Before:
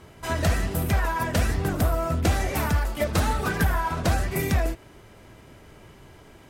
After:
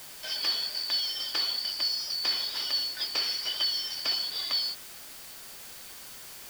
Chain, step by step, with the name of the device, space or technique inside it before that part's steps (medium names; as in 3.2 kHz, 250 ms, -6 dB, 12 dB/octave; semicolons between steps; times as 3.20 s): split-band scrambled radio (four frequency bands reordered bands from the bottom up 4321; band-pass 330–3100 Hz; white noise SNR 13 dB)